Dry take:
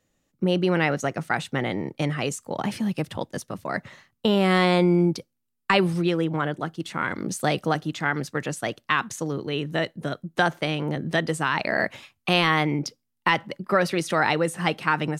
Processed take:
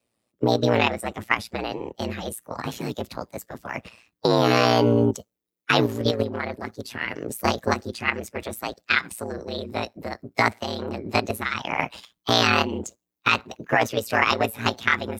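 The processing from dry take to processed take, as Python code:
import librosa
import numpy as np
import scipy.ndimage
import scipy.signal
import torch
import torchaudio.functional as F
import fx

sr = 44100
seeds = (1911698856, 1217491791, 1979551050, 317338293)

p1 = fx.spec_quant(x, sr, step_db=15)
p2 = scipy.signal.sosfilt(scipy.signal.butter(4, 120.0, 'highpass', fs=sr, output='sos'), p1)
p3 = fx.level_steps(p2, sr, step_db=23)
p4 = p2 + F.gain(torch.from_numpy(p3), 2.0).numpy()
p5 = fx.formant_shift(p4, sr, semitones=5)
p6 = p5 * np.sin(2.0 * np.pi * 58.0 * np.arange(len(p5)) / sr)
y = F.gain(torch.from_numpy(p6), -1.0).numpy()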